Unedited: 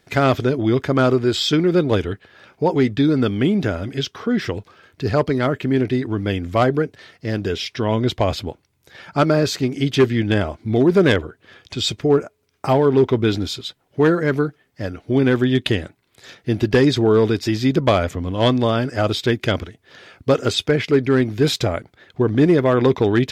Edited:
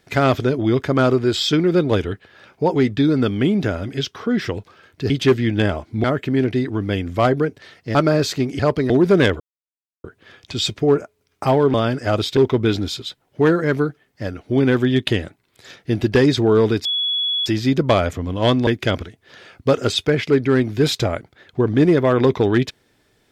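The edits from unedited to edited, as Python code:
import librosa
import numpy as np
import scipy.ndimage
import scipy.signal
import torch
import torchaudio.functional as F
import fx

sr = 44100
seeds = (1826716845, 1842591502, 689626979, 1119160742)

y = fx.edit(x, sr, fx.swap(start_s=5.1, length_s=0.31, other_s=9.82, other_length_s=0.94),
    fx.cut(start_s=7.32, length_s=1.86),
    fx.insert_silence(at_s=11.26, length_s=0.64),
    fx.insert_tone(at_s=17.44, length_s=0.61, hz=3380.0, db=-18.0),
    fx.move(start_s=18.65, length_s=0.63, to_s=12.96), tone=tone)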